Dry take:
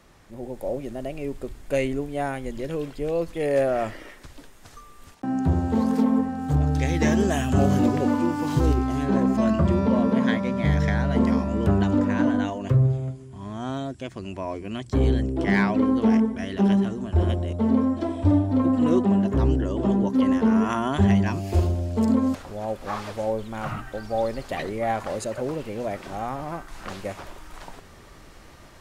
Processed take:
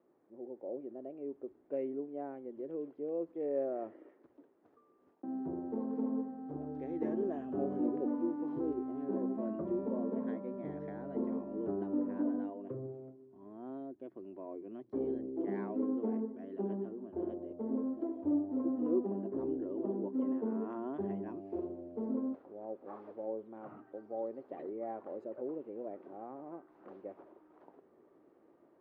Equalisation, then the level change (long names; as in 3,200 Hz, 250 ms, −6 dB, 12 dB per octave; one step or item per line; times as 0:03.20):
four-pole ladder band-pass 400 Hz, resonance 45%
−2.0 dB